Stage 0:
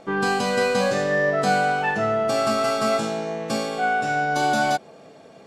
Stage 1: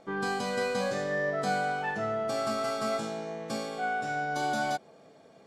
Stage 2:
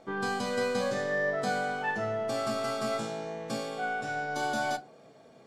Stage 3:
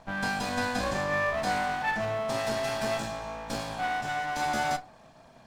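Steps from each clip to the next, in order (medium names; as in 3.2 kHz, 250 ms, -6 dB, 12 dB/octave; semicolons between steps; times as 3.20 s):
band-stop 2.7 kHz, Q 13; trim -9 dB
reverberation RT60 0.25 s, pre-delay 8 ms, DRR 10 dB
comb filter that takes the minimum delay 1.2 ms; trim +3 dB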